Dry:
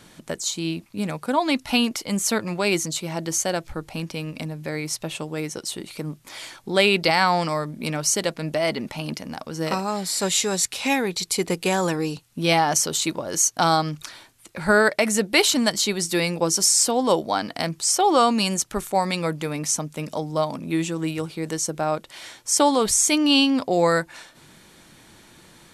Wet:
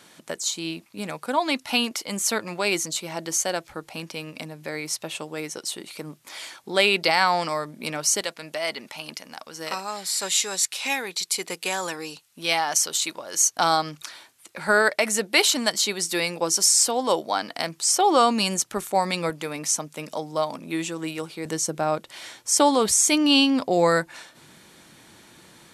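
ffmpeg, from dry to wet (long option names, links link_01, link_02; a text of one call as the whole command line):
ffmpeg -i in.wav -af "asetnsamples=nb_out_samples=441:pad=0,asendcmd='8.21 highpass f 1200;13.41 highpass f 490;17.91 highpass f 210;19.3 highpass f 430;21.45 highpass f 110',highpass=frequency=440:poles=1" out.wav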